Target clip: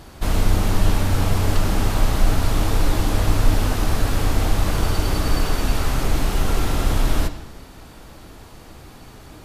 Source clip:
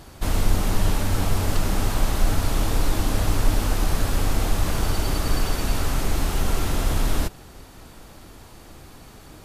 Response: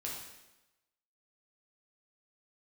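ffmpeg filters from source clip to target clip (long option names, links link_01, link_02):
-filter_complex "[0:a]asplit=2[link_01][link_02];[1:a]atrim=start_sample=2205,lowpass=6100[link_03];[link_02][link_03]afir=irnorm=-1:irlink=0,volume=-5.5dB[link_04];[link_01][link_04]amix=inputs=2:normalize=0"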